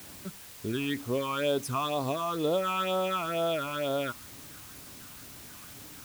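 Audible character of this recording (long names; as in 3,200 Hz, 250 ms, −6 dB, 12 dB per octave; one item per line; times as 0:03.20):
phaser sweep stages 8, 2.1 Hz, lowest notch 500–2,200 Hz
a quantiser's noise floor 8 bits, dither triangular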